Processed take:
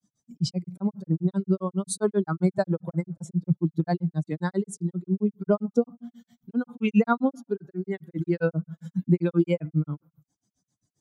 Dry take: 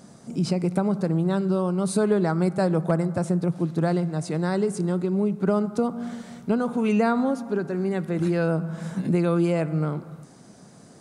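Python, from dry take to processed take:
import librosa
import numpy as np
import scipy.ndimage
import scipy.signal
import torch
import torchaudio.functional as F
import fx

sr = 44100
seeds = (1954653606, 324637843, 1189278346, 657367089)

p1 = fx.bin_expand(x, sr, power=2.0)
p2 = fx.rider(p1, sr, range_db=5, speed_s=2.0)
p3 = p1 + (p2 * 10.0 ** (1.0 / 20.0))
y = fx.granulator(p3, sr, seeds[0], grain_ms=112.0, per_s=7.5, spray_ms=14.0, spread_st=0)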